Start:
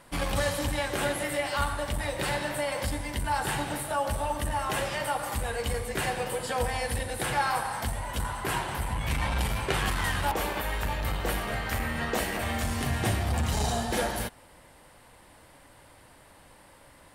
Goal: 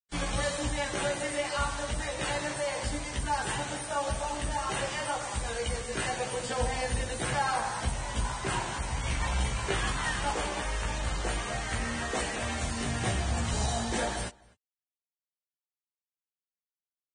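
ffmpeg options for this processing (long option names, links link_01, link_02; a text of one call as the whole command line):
ffmpeg -i in.wav -filter_complex "[0:a]asettb=1/sr,asplit=3[link_01][link_02][link_03];[link_01]atrim=end=6.334[link_04];[link_02]atrim=start=6.33:end=8.73,asetpts=PTS-STARTPTS,afade=type=in:duration=0.004:curve=qsin,afade=type=out:start_time=2.396:duration=0.004:curve=qsin,lowshelf=frequency=410:gain=3.5[link_05];[link_03]atrim=start=8.726[link_06];[link_04][link_05]acrossfade=duration=0.004:curve1=hsin:curve2=qsin[link_07];[link_07][link_06]acrossfade=duration=0.004:curve1=qsin:curve2=hsin,acrusher=bits=5:mix=0:aa=0.000001,flanger=delay=15.5:depth=2.1:speed=1.9,asplit=2[link_08][link_09];[link_09]adelay=250.7,volume=-25dB,highshelf=frequency=4000:gain=-5.64[link_10];[link_08][link_10]amix=inputs=2:normalize=0" -ar 22050 -c:a libvorbis -b:a 16k out.ogg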